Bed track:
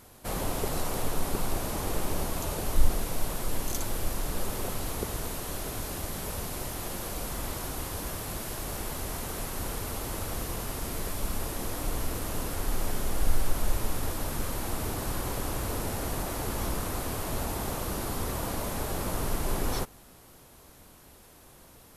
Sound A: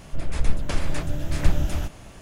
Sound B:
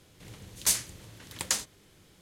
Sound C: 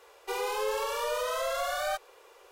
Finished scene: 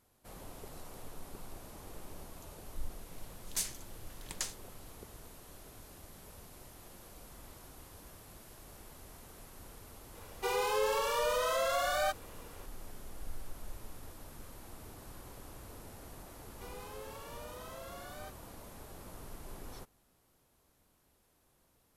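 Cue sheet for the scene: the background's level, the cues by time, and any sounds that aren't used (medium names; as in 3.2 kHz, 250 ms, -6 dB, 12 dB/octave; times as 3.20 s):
bed track -18 dB
2.90 s: add B -10 dB
10.15 s: add C -0.5 dB
16.33 s: add C -17.5 dB
not used: A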